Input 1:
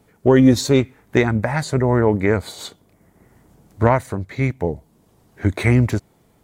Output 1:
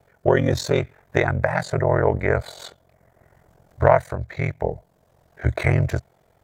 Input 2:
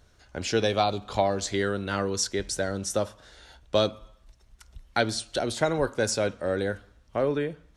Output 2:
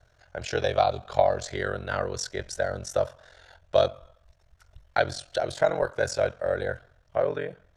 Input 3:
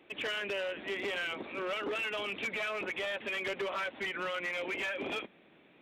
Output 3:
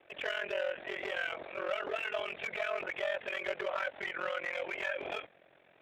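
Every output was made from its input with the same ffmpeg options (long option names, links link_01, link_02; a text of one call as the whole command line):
ffmpeg -i in.wav -af "equalizer=frequency=100:width_type=o:width=0.67:gain=5,equalizer=frequency=250:width_type=o:width=0.67:gain=-11,equalizer=frequency=630:width_type=o:width=0.67:gain=10,equalizer=frequency=1600:width_type=o:width=0.67:gain=6,equalizer=frequency=10000:width_type=o:width=0.67:gain=-5,aeval=exprs='val(0)*sin(2*PI*22*n/s)':channel_layout=same,volume=-2dB" out.wav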